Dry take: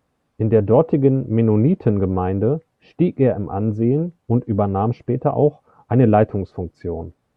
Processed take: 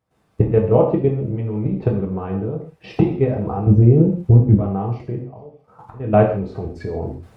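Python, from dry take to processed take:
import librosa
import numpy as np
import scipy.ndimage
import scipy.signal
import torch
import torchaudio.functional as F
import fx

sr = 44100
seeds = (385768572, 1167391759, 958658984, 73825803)

y = fx.recorder_agc(x, sr, target_db=-8.5, rise_db_per_s=39.0, max_gain_db=30)
y = fx.low_shelf(y, sr, hz=450.0, db=10.5, at=(3.67, 4.55))
y = fx.auto_swell(y, sr, attack_ms=542.0, at=(5.19, 6.06), fade=0.02)
y = fx.level_steps(y, sr, step_db=13)
y = fx.echo_wet_highpass(y, sr, ms=215, feedback_pct=70, hz=2400.0, wet_db=-23.0)
y = fx.rev_gated(y, sr, seeds[0], gate_ms=190, shape='falling', drr_db=-1.0)
y = y * librosa.db_to_amplitude(-1.5)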